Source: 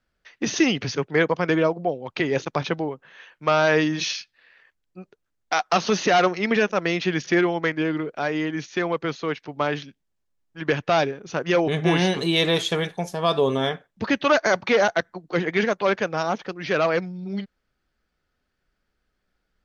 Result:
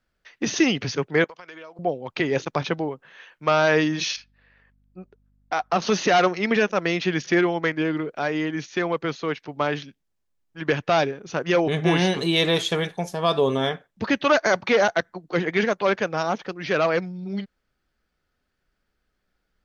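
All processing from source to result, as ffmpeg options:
-filter_complex "[0:a]asettb=1/sr,asplit=3[a][b][c];[a]atrim=end=1.244[d];[b]atrim=start=1.24:end=1.79,asetpts=PTS-STARTPTS,afade=t=in:d=0.004:c=qsin,afade=t=out:st=0.546:d=0.004:c=qsin,highpass=f=1.4k:p=1,acompressor=threshold=-37dB:ratio=12:attack=3.2:release=140:knee=1:detection=peak[e];[c]atrim=start=1.786[f];[d][e]acrossfade=d=0.004:c1=hsin:c2=qsin[g];[g][f]acrossfade=d=0.004:c1=qsin:c2=hsin,asettb=1/sr,asplit=3[h][i][j];[h]atrim=end=4.164[k];[i]atrim=start=4.16:end=5.82,asetpts=PTS-STARTPTS,afade=t=in:d=0.004:c=qsin,afade=t=out:st=1.656:d=0.004:c=qsin,highshelf=f=2.2k:g=-12,aeval=exprs='val(0)+0.000794*(sin(2*PI*50*n/s)+sin(2*PI*2*50*n/s)/2+sin(2*PI*3*50*n/s)/3+sin(2*PI*4*50*n/s)/4+sin(2*PI*5*50*n/s)/5)':c=same[l];[j]atrim=start=5.816[m];[k][l]acrossfade=d=0.004:c1=hsin:c2=qsin[n];[n][m]acrossfade=d=0.004:c1=qsin:c2=hsin"

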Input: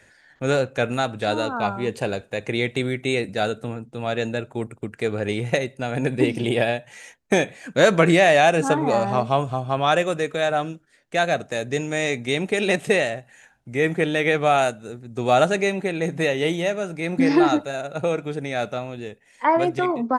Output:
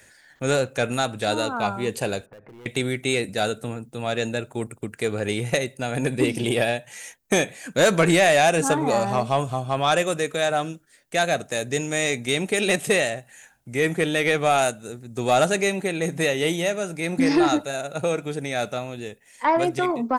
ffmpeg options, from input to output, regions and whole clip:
-filter_complex "[0:a]asettb=1/sr,asplit=3[a][b][c];[a]atrim=end=2.264[d];[b]atrim=start=2.26:end=2.66,asetpts=PTS-STARTPTS,afade=t=in:d=0.004:c=qsin,afade=t=out:st=0.396:d=0.004:c=qsin,lowpass=f=1.6k:w=0.5412,lowpass=f=1.6k:w=1.3066,asoftclip=type=hard:threshold=-25dB,acompressor=threshold=-43dB:ratio=10:attack=3.2:release=140:knee=1:detection=peak[e];[c]atrim=start=2.656[f];[d][e]acrossfade=d=0.004:c1=hsin:c2=qsin[g];[g][f]acrossfade=d=0.004:c1=qsin:c2=hsin,aemphasis=mode=production:type=50fm,acontrast=70,volume=-7dB"

